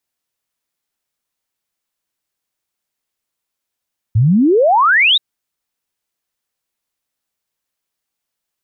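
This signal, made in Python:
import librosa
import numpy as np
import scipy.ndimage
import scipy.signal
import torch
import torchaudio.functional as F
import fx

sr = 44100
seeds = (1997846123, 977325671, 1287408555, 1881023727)

y = fx.ess(sr, length_s=1.03, from_hz=100.0, to_hz=3900.0, level_db=-8.0)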